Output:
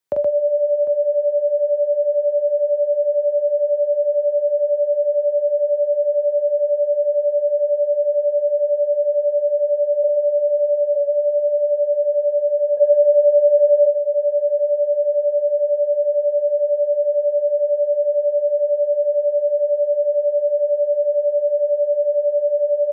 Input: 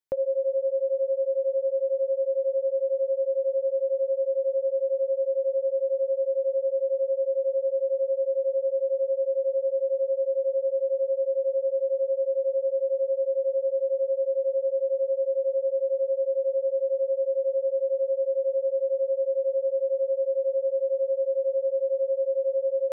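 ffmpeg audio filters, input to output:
ffmpeg -i in.wav -filter_complex "[0:a]asplit=3[link_01][link_02][link_03];[link_01]afade=type=out:start_time=10.03:duration=0.02[link_04];[link_02]highpass=frequency=350:width=0.5412,highpass=frequency=350:width=1.3066,afade=type=in:start_time=10.03:duration=0.02,afade=type=out:start_time=10.95:duration=0.02[link_05];[link_03]afade=type=in:start_time=10.95:duration=0.02[link_06];[link_04][link_05][link_06]amix=inputs=3:normalize=0,asplit=3[link_07][link_08][link_09];[link_07]afade=type=out:start_time=12.77:duration=0.02[link_10];[link_08]equalizer=frequency=520:width_type=o:width=0.77:gain=12.5,afade=type=in:start_time=12.77:duration=0.02,afade=type=out:start_time=13.85:duration=0.02[link_11];[link_09]afade=type=in:start_time=13.85:duration=0.02[link_12];[link_10][link_11][link_12]amix=inputs=3:normalize=0,acompressor=threshold=-26dB:ratio=2.5,afreqshift=43,aecho=1:1:44|124|752:0.596|0.596|0.178,volume=7.5dB" out.wav

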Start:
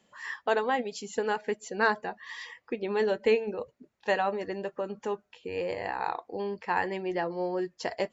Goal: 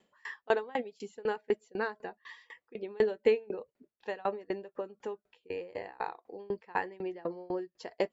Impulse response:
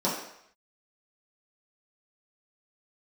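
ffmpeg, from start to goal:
-af "equalizer=frequency=100:width_type=o:width=0.67:gain=-6,equalizer=frequency=400:width_type=o:width=0.67:gain=5,equalizer=frequency=6300:width_type=o:width=0.67:gain=-6,aeval=exprs='val(0)*pow(10,-27*if(lt(mod(4*n/s,1),2*abs(4)/1000),1-mod(4*n/s,1)/(2*abs(4)/1000),(mod(4*n/s,1)-2*abs(4)/1000)/(1-2*abs(4)/1000))/20)':channel_layout=same"

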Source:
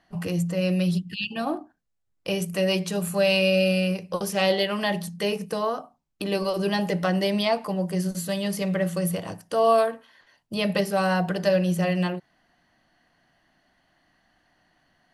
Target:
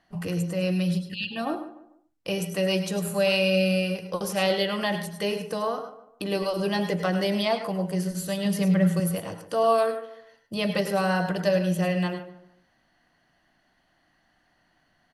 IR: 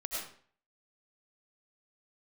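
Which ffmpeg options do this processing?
-filter_complex "[0:a]asettb=1/sr,asplit=3[link_01][link_02][link_03];[link_01]atrim=end=8.454[link_04];[link_02]atrim=start=8.45:end=9,asetpts=PTS-STARTPTS,afade=type=in:duration=0.004:curve=qsin,afade=type=out:start_time=0.546:duration=0.004:curve=qsin,equalizer=frequency=170:width_type=o:width=0.81:gain=8[link_05];[link_03]atrim=start=8.996[link_06];[link_04][link_05]acrossfade=duration=0.004:curve1=hsin:curve2=qsin[link_07];[link_07][link_06]acrossfade=duration=0.004:curve1=qsin:curve2=hsin,asplit=2[link_08][link_09];[link_09]adelay=148,lowpass=frequency=1600:poles=1,volume=-13dB,asplit=2[link_10][link_11];[link_11]adelay=148,lowpass=frequency=1600:poles=1,volume=0.35,asplit=2[link_12][link_13];[link_13]adelay=148,lowpass=frequency=1600:poles=1,volume=0.35[link_14];[link_08][link_10][link_12][link_14]amix=inputs=4:normalize=0[link_15];[1:a]atrim=start_sample=2205,atrim=end_sample=3528,asetrate=32634,aresample=44100[link_16];[link_15][link_16]afir=irnorm=-1:irlink=0"

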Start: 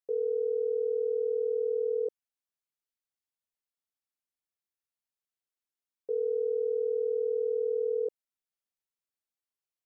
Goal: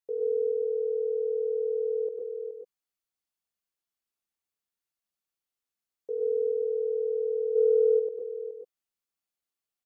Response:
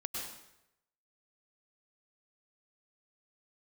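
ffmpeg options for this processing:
-filter_complex "[0:a]aecho=1:1:422:0.376[link_01];[1:a]atrim=start_sample=2205,atrim=end_sample=6174[link_02];[link_01][link_02]afir=irnorm=-1:irlink=0,asplit=3[link_03][link_04][link_05];[link_03]afade=type=out:start_time=7.55:duration=0.02[link_06];[link_04]acontrast=88,afade=type=in:start_time=7.55:duration=0.02,afade=type=out:start_time=7.98:duration=0.02[link_07];[link_05]afade=type=in:start_time=7.98:duration=0.02[link_08];[link_06][link_07][link_08]amix=inputs=3:normalize=0,volume=1.5dB"

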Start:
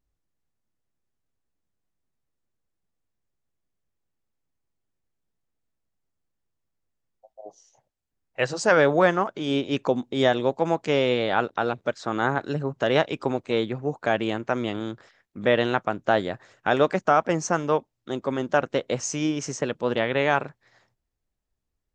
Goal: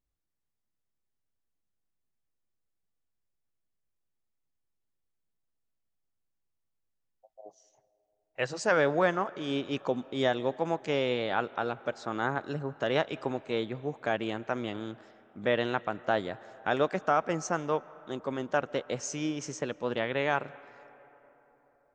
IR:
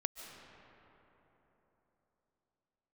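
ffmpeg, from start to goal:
-filter_complex "[0:a]asplit=2[link_01][link_02];[1:a]atrim=start_sample=2205,lowshelf=frequency=450:gain=-11,highshelf=frequency=4900:gain=-9[link_03];[link_02][link_03]afir=irnorm=-1:irlink=0,volume=-9.5dB[link_04];[link_01][link_04]amix=inputs=2:normalize=0,volume=-8dB"

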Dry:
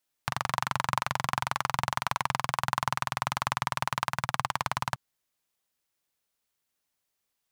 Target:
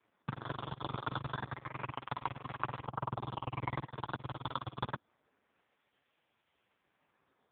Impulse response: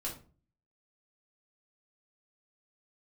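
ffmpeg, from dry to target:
-filter_complex "[0:a]asettb=1/sr,asplit=3[link_01][link_02][link_03];[link_01]atrim=end=2.874[link_04];[link_02]atrim=start=2.87:end=4.49,asetpts=PTS-STARTPTS,afade=type=in:duration=0.004:curve=qsin,afade=type=out:start_time=1.616:duration=0.004:curve=qsin,lowpass=frequency=1100:width=0.5412,lowpass=frequency=1100:width=1.3066[link_05];[link_03]atrim=start=4.486[link_06];[link_04][link_05]acrossfade=duration=0.004:curve1=hsin:curve2=qsin[link_07];[link_07][link_06]acrossfade=duration=0.004:curve1=qsin:curve2=hsin,alimiter=limit=-13dB:level=0:latency=1:release=11,acrusher=samples=13:mix=1:aa=0.000001:lfo=1:lforange=13:lforate=0.28,asoftclip=type=tanh:threshold=-19.5dB,volume=9.5dB" -ar 8000 -c:a libopencore_amrnb -b:a 4750

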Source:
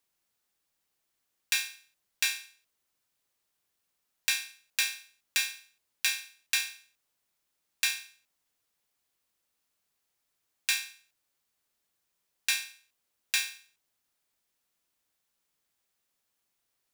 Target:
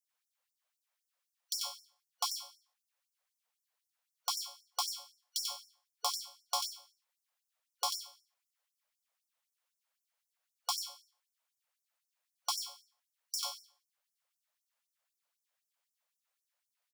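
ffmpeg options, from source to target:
ffmpeg -i in.wav -filter_complex "[0:a]afftfilt=real='real(if(lt(b,272),68*(eq(floor(b/68),0)*2+eq(floor(b/68),1)*0+eq(floor(b/68),2)*3+eq(floor(b/68),3)*1)+mod(b,68),b),0)':imag='imag(if(lt(b,272),68*(eq(floor(b/68),0)*2+eq(floor(b/68),1)*0+eq(floor(b/68),2)*3+eq(floor(b/68),3)*1)+mod(b,68),b),0)':win_size=2048:overlap=0.75,highshelf=frequency=2100:gain=-8.5,bandreject=frequency=60:width_type=h:width=6,bandreject=frequency=120:width_type=h:width=6,bandreject=frequency=180:width_type=h:width=6,bandreject=frequency=240:width_type=h:width=6,asplit=2[link_01][link_02];[link_02]aecho=0:1:91:0.596[link_03];[link_01][link_03]amix=inputs=2:normalize=0,afftfilt=real='re*gte(b*sr/1024,440*pow(5300/440,0.5+0.5*sin(2*PI*3.9*pts/sr)))':imag='im*gte(b*sr/1024,440*pow(5300/440,0.5+0.5*sin(2*PI*3.9*pts/sr)))':win_size=1024:overlap=0.75" out.wav

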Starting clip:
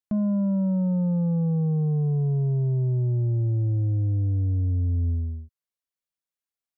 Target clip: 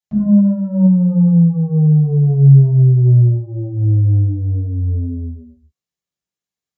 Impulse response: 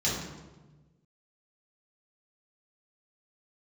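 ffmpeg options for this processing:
-filter_complex "[1:a]atrim=start_sample=2205,afade=type=out:start_time=0.28:duration=0.01,atrim=end_sample=12789[link_01];[0:a][link_01]afir=irnorm=-1:irlink=0,asettb=1/sr,asplit=3[link_02][link_03][link_04];[link_02]atrim=end=0.864[link_05];[link_03]atrim=start=0.86:end=2.3,asetpts=PTS-STARTPTS,afade=type=in:duration=0.004:curve=qsin,afade=type=out:start_time=1.436:duration=0.004:curve=qsin,acompressor=threshold=-5dB:ratio=2[link_06];[link_04]atrim=start=2.296[link_07];[link_05][link_06]acrossfade=duration=0.004:curve1=hsin:curve2=qsin[link_08];[link_08][link_07]acrossfade=duration=0.004:curve1=qsin:curve2=hsin,volume=-5.5dB"

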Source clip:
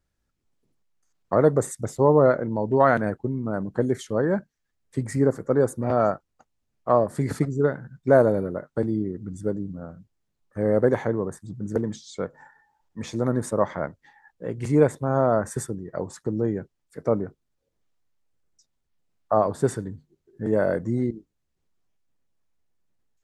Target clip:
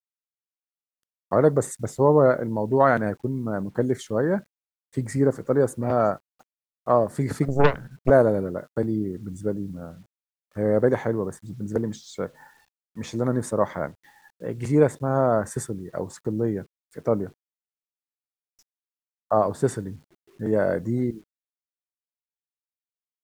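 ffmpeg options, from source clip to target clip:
ffmpeg -i in.wav -filter_complex "[0:a]asettb=1/sr,asplit=3[link_01][link_02][link_03];[link_01]atrim=end=7.484[link_04];[link_02]atrim=start=7.48:end=8.1,asetpts=PTS-STARTPTS,afade=type=in:duration=0.004:curve=qsin,afade=type=out:start_time=0.616:duration=0.004:curve=qsin,aeval=exprs='0.398*(cos(1*acos(clip(val(0)/0.398,-1,1)))-cos(1*PI/2))+0.158*(cos(6*acos(clip(val(0)/0.398,-1,1)))-cos(6*PI/2))':channel_layout=same[link_05];[link_03]atrim=start=8.096[link_06];[link_04][link_05]acrossfade=duration=0.004:curve1=hsin:curve2=qsin[link_07];[link_07][link_06]acrossfade=duration=0.004:curve1=qsin:curve2=hsin,acrusher=bits=9:mix=0:aa=0.000001" out.wav

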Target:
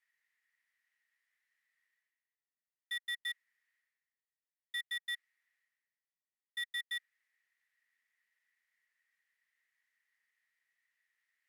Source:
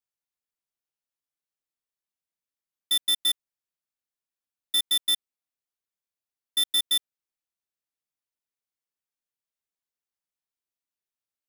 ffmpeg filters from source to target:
ffmpeg -i in.wav -af "aemphasis=mode=production:type=50kf,areverse,acompressor=mode=upward:threshold=-36dB:ratio=2.5,areverse,bandpass=frequency=1900:width_type=q:width=17:csg=0,volume=5.5dB" out.wav

